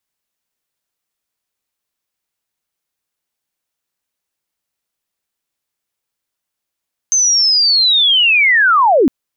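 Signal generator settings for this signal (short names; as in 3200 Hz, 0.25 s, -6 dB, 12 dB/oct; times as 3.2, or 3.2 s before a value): chirp linear 6300 Hz -> 230 Hz -9.5 dBFS -> -7 dBFS 1.96 s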